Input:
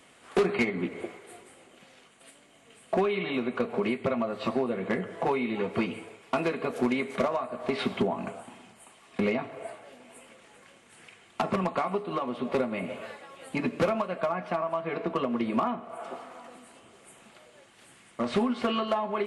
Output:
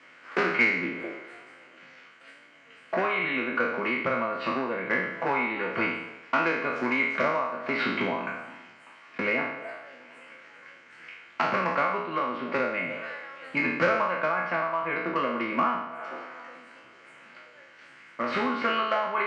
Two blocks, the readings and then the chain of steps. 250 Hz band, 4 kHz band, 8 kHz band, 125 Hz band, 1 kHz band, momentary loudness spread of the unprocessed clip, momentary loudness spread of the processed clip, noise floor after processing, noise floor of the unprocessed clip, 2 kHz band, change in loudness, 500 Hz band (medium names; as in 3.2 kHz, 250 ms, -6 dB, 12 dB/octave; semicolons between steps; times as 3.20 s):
-3.0 dB, +1.5 dB, no reading, -4.0 dB, +4.5 dB, 15 LU, 17 LU, -53 dBFS, -57 dBFS, +10.0 dB, +2.5 dB, -1.0 dB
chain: spectral sustain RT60 0.83 s; cabinet simulation 190–5200 Hz, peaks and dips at 210 Hz -9 dB, 400 Hz -8 dB, 730 Hz -7 dB, 1.5 kHz +8 dB, 2.1 kHz +6 dB, 3.6 kHz -9 dB; trim +1 dB